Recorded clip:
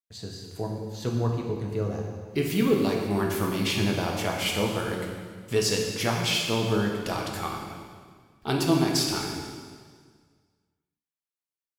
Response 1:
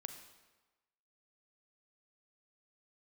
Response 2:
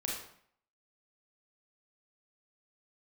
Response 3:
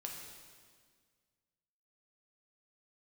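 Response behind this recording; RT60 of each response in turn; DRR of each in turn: 3; 1.2 s, 0.60 s, 1.8 s; 6.5 dB, -3.0 dB, -0.5 dB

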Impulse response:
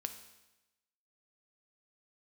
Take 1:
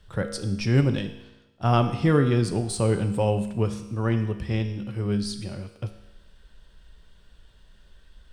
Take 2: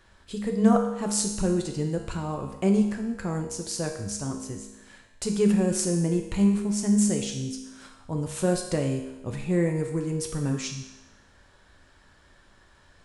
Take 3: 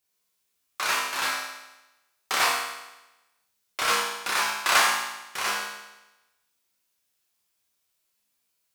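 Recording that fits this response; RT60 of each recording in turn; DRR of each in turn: 1; 1.0 s, 1.0 s, 1.0 s; 7.0 dB, 2.5 dB, -5.5 dB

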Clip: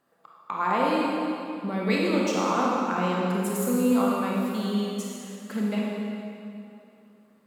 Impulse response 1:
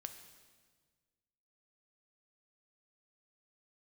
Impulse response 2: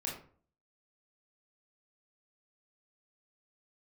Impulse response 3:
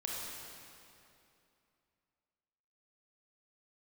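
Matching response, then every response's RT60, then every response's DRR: 3; 1.5 s, 0.45 s, 2.7 s; 7.0 dB, -3.0 dB, -4.0 dB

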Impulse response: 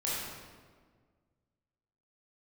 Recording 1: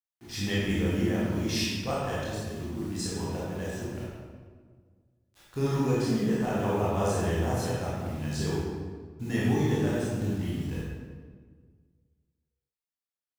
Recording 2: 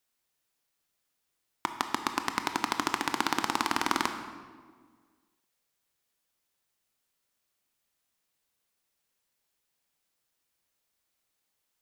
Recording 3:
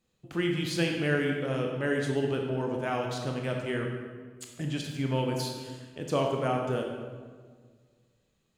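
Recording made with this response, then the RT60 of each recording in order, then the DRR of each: 1; 1.6 s, 1.7 s, 1.7 s; -8.0 dB, 7.0 dB, 1.5 dB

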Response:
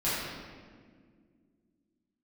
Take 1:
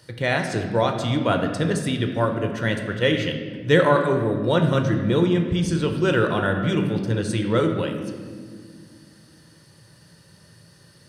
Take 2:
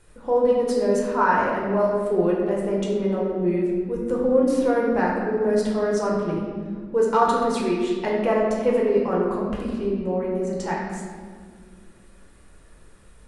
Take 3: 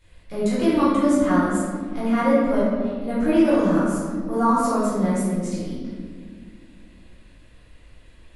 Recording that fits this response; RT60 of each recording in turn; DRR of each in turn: 3; 1.9 s, 1.9 s, 1.9 s; 4.0 dB, -4.0 dB, -12.0 dB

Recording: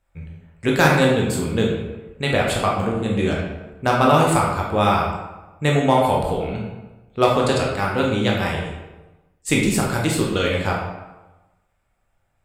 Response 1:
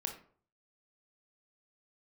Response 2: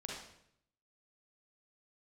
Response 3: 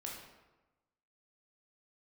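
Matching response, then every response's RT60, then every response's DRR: 3; 0.50 s, 0.70 s, 1.1 s; 3.5 dB, -3.5 dB, -2.5 dB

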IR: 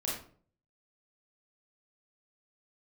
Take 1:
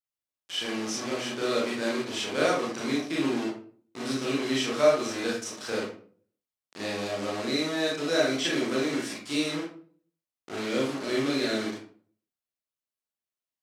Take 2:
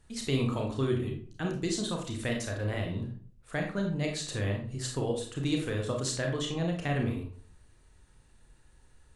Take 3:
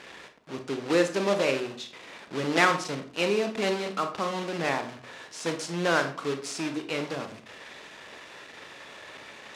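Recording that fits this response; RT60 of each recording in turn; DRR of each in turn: 1; 0.50 s, 0.50 s, 0.50 s; -5.5 dB, 1.0 dB, 7.0 dB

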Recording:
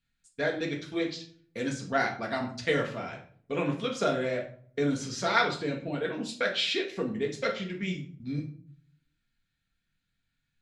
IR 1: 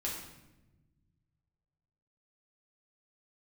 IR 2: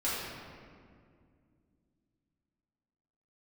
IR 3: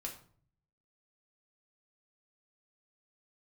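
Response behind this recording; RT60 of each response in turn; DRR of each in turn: 3; 1.0 s, 2.2 s, 0.50 s; -4.5 dB, -10.0 dB, -0.5 dB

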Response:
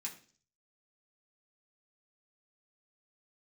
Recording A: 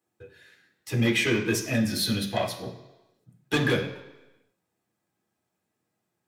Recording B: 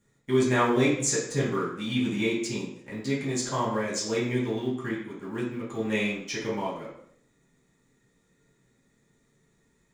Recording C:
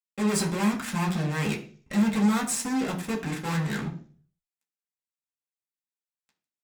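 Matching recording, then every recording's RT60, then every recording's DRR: C; 1.0 s, 0.65 s, 0.45 s; -2.0 dB, -8.5 dB, -4.0 dB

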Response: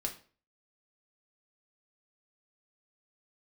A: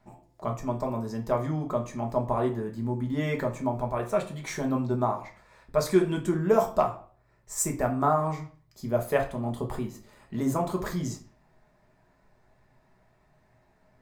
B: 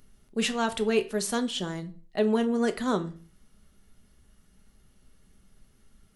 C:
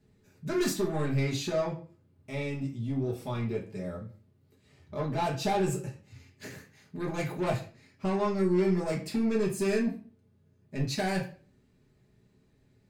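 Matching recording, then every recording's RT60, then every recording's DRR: A; 0.40 s, 0.40 s, 0.40 s; 1.0 dB, 8.0 dB, -3.0 dB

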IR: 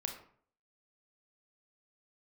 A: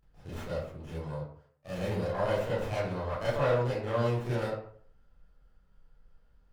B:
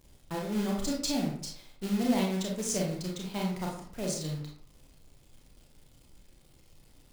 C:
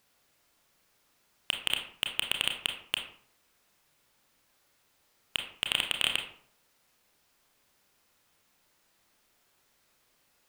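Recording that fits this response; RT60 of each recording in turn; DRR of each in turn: C; 0.55 s, 0.55 s, 0.55 s; -10.5 dB, -2.0 dB, 3.0 dB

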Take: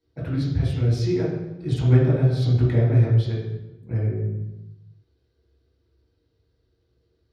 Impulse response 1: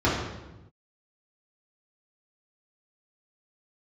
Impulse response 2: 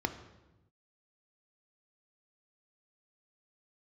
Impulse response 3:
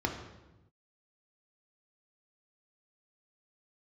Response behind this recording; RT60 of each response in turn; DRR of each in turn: 1; 1.0 s, 1.0 s, 1.0 s; -7.5 dB, 8.5 dB, 2.5 dB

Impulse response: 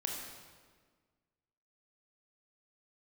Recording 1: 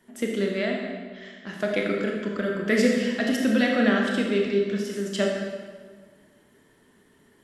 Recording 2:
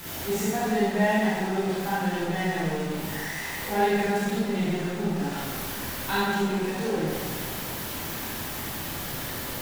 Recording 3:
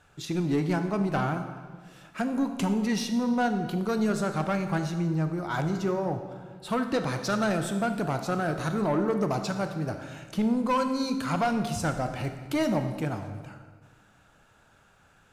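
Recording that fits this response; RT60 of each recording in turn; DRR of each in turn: 1; 1.6 s, 1.6 s, 1.6 s; -0.5 dB, -9.0 dB, 7.0 dB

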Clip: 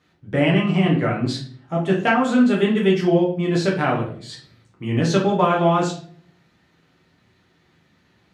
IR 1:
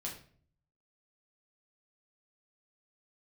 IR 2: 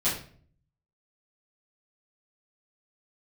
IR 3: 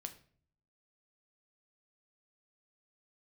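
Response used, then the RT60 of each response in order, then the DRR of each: 1; 0.50 s, 0.50 s, 0.50 s; -3.0 dB, -12.0 dB, 6.5 dB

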